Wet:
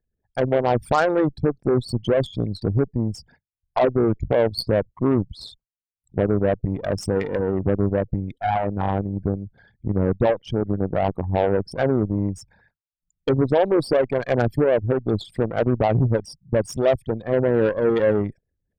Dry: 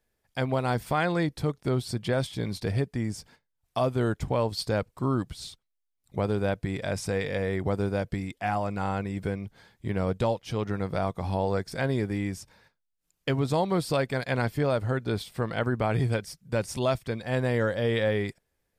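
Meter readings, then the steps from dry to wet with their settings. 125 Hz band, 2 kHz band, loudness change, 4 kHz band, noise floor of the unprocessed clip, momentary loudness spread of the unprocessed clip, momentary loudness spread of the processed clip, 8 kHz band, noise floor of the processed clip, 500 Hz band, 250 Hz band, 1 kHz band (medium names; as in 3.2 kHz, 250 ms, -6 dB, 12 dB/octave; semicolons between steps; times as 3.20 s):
+4.5 dB, +1.0 dB, +6.5 dB, +1.0 dB, -80 dBFS, 7 LU, 8 LU, no reading, under -85 dBFS, +8.5 dB, +7.0 dB, +5.5 dB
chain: resonances exaggerated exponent 3; Chebyshev shaper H 7 -23 dB, 8 -28 dB, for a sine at -14 dBFS; trim +7.5 dB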